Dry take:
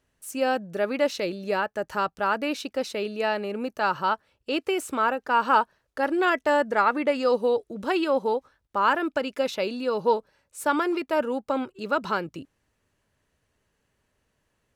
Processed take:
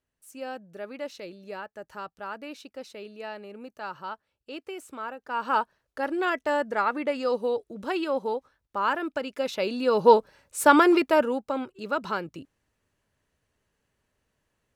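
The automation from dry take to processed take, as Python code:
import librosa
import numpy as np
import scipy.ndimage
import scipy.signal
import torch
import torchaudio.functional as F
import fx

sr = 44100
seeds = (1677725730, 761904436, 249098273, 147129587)

y = fx.gain(x, sr, db=fx.line((5.16, -12.0), (5.57, -4.0), (9.35, -4.0), (10.18, 7.0), (10.98, 7.0), (11.5, -3.0)))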